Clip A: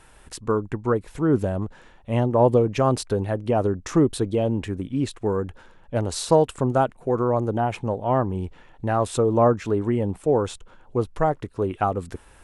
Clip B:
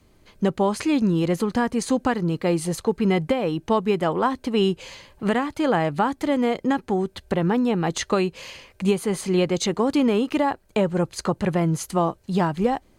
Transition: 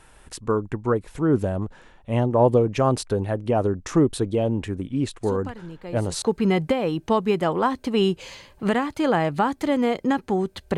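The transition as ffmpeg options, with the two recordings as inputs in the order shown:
-filter_complex "[1:a]asplit=2[s0][s1];[0:a]apad=whole_dur=10.77,atrim=end=10.77,atrim=end=6.222[s2];[s1]atrim=start=2.818:end=7.37[s3];[s0]atrim=start=1.83:end=2.82,asetpts=PTS-STARTPTS,volume=0.188,afade=t=in:d=0.004:c=hsin,afade=t=out:st=0.986:d=0.004:c=hsin,adelay=5230[s4];[s2][s3]acrossfade=d=0.004:c1=hsin:c2=hsin[s5];[s5][s4]amix=inputs=2:normalize=0"

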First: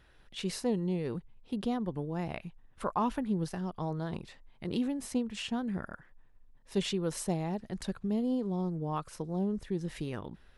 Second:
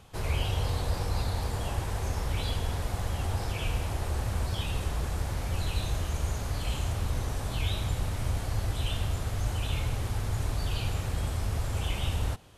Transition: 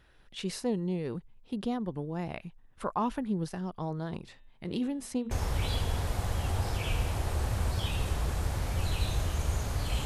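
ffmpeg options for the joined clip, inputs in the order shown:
-filter_complex "[0:a]asettb=1/sr,asplit=3[s0][s1][s2];[s0]atrim=end=4.194[s3];[s1]atrim=start=4.19:end=5.31,asetpts=PTS-STARTPTS,afade=t=in:d=0.004:c=qsin,afade=t=out:st=1.116:d=0.004:c=qsin,bandreject=f=118.7:t=h:w=4,bandreject=f=237.4:t=h:w=4,bandreject=f=356.1:t=h:w=4,bandreject=f=474.8:t=h:w=4,bandreject=f=593.5:t=h:w=4,bandreject=f=712.2:t=h:w=4,bandreject=f=830.9:t=h:w=4,bandreject=f=949.6:t=h:w=4,bandreject=f=1068.3:t=h:w=4,bandreject=f=1187:t=h:w=4,bandreject=f=1305.7:t=h:w=4,bandreject=f=1424.4:t=h:w=4,bandreject=f=1543.1:t=h:w=4,bandreject=f=1661.8:t=h:w=4,bandreject=f=1780.5:t=h:w=4,bandreject=f=1899.2:t=h:w=4,bandreject=f=2017.9:t=h:w=4,bandreject=f=2136.6:t=h:w=4,bandreject=f=2255.3:t=h:w=4,bandreject=f=2374:t=h:w=4,bandreject=f=2492.7:t=h:w=4,bandreject=f=2611.4:t=h:w=4,bandreject=f=2730.1:t=h:w=4,bandreject=f=2848.8:t=h:w=4,bandreject=f=2967.5:t=h:w=4,bandreject=f=3086.2:t=h:w=4,bandreject=f=3204.9:t=h:w=4,bandreject=f=3323.6:t=h:w=4,bandreject=f=3442.3:t=h:w=4,bandreject=f=3561:t=h:w=4,bandreject=f=3679.7:t=h:w=4,bandreject=f=3798.4:t=h:w=4,bandreject=f=3917.1:t=h:w=4,bandreject=f=4035.8:t=h:w=4[s4];[s2]atrim=start=5.306[s5];[s3][s4]acrossfade=d=0.004:c1=hsin:c2=qsin[s6];[s6][s5]acrossfade=d=0.004:c1=qsin:c2=hsin,apad=whole_dur=10.05,atrim=end=10.05,atrim=end=5.312[s7];[1:a]atrim=start=2.058:end=6.8[s8];[s7][s8]acrossfade=d=0.004:c1=hsin:c2=hsin"

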